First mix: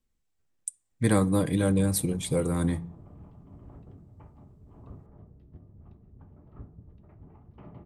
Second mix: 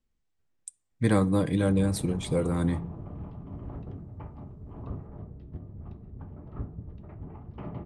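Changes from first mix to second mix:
speech: add air absorption 60 m; background +9.0 dB

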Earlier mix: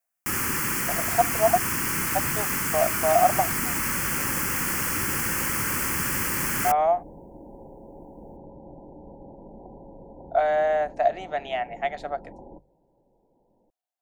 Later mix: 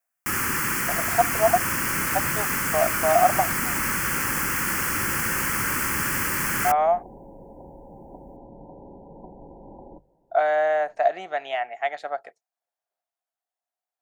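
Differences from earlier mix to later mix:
second sound: entry -2.60 s; master: add bell 1500 Hz +4.5 dB 1.1 oct

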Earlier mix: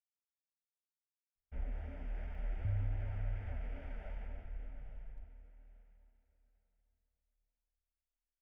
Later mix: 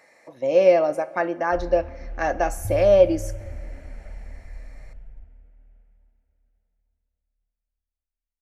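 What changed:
speech: unmuted; master: add low shelf 440 Hz +6.5 dB

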